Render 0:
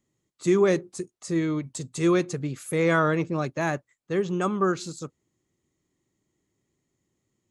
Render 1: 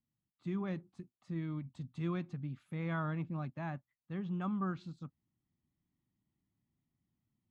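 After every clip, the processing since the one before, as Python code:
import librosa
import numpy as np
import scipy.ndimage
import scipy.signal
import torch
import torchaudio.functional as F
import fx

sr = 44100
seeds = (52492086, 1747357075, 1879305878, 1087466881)

y = fx.curve_eq(x, sr, hz=(240.0, 430.0, 780.0, 1900.0, 3400.0, 6900.0), db=(0, -19, -5, -10, -9, -30))
y = fx.rider(y, sr, range_db=4, speed_s=2.0)
y = F.gain(torch.from_numpy(y), -8.5).numpy()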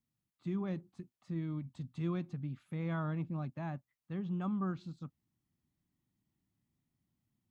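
y = fx.dynamic_eq(x, sr, hz=1800.0, q=0.75, threshold_db=-55.0, ratio=4.0, max_db=-5)
y = F.gain(torch.from_numpy(y), 1.0).numpy()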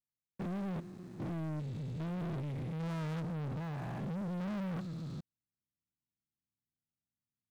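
y = fx.spec_steps(x, sr, hold_ms=400)
y = fx.leveller(y, sr, passes=5)
y = F.gain(torch.from_numpy(y), -6.0).numpy()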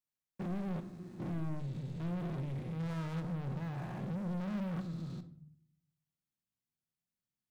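y = fx.room_shoebox(x, sr, seeds[0], volume_m3=920.0, walls='furnished', distance_m=0.97)
y = F.gain(torch.from_numpy(y), -2.0).numpy()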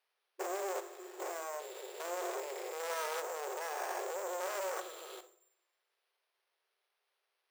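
y = np.repeat(x[::6], 6)[:len(x)]
y = fx.brickwall_highpass(y, sr, low_hz=360.0)
y = F.gain(torch.from_numpy(y), 10.0).numpy()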